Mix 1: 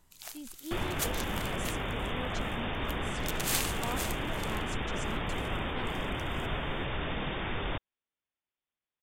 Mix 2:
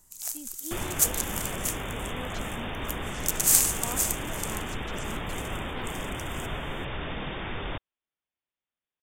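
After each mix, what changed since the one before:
first sound: add resonant high shelf 5000 Hz +11.5 dB, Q 1.5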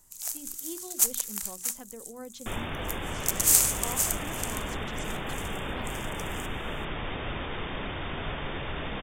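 second sound: entry +1.75 s; master: add notches 60/120/180/240/300/360 Hz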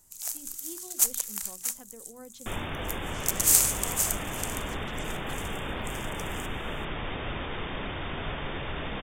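speech -4.5 dB

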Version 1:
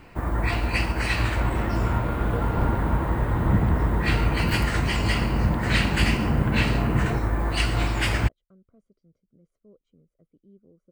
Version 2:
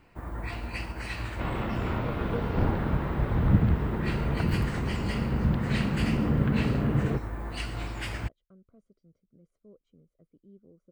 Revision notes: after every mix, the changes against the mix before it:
first sound -11.0 dB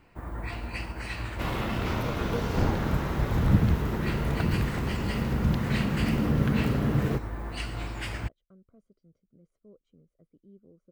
second sound: remove air absorption 300 m

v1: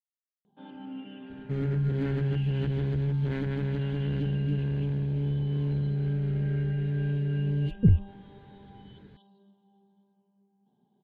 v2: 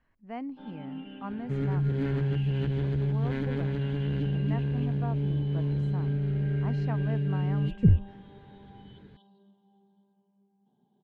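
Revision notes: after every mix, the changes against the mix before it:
speech: unmuted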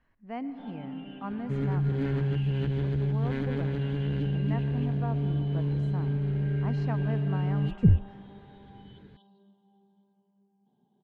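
reverb: on, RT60 2.8 s

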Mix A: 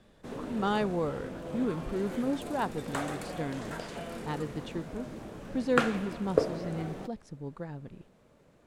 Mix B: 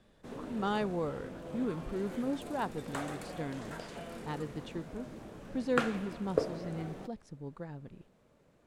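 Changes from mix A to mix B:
speech -3.5 dB; background -4.5 dB

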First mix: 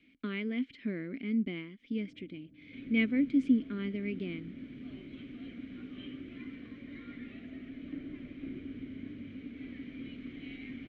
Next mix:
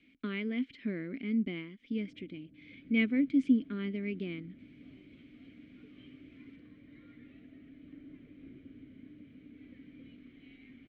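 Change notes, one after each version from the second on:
second sound -11.0 dB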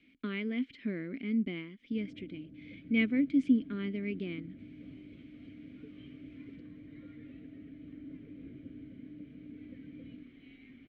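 first sound +7.5 dB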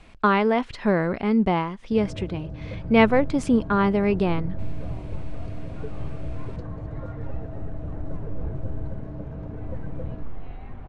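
second sound: add LPF 1100 Hz 6 dB/oct; master: remove vowel filter i

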